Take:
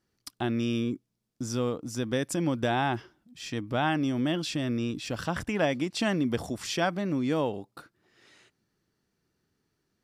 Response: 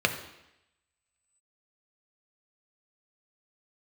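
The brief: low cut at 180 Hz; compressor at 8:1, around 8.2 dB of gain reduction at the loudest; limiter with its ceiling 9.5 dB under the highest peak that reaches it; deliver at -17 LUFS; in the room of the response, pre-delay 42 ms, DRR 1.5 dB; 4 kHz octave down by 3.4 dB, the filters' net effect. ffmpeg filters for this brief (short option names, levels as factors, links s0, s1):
-filter_complex "[0:a]highpass=180,equalizer=f=4000:t=o:g=-4.5,acompressor=threshold=0.0282:ratio=8,alimiter=level_in=1.58:limit=0.0631:level=0:latency=1,volume=0.631,asplit=2[s0][s1];[1:a]atrim=start_sample=2205,adelay=42[s2];[s1][s2]afir=irnorm=-1:irlink=0,volume=0.188[s3];[s0][s3]amix=inputs=2:normalize=0,volume=10"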